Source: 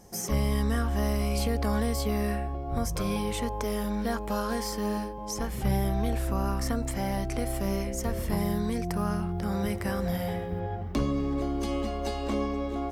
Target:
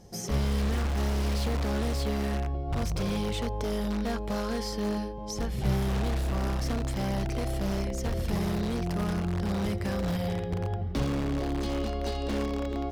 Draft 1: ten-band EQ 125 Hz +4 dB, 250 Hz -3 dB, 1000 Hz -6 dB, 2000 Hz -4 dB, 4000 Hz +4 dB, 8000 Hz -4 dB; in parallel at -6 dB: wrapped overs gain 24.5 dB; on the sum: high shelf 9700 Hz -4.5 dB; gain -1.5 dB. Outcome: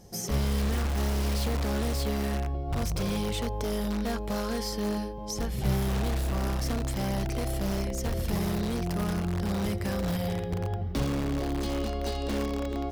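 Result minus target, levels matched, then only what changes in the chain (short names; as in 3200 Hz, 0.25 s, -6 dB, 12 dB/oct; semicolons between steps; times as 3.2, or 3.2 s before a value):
8000 Hz band +3.0 dB
change: high shelf 9700 Hz -14.5 dB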